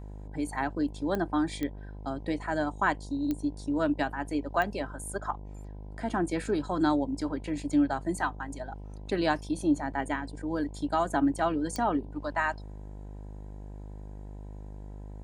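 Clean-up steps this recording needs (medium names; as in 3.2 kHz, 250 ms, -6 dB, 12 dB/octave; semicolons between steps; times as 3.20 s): de-click; de-hum 50.8 Hz, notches 20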